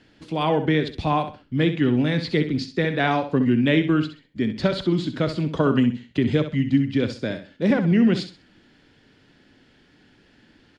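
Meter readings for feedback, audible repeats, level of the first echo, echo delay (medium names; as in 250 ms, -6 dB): 28%, 3, -10.0 dB, 65 ms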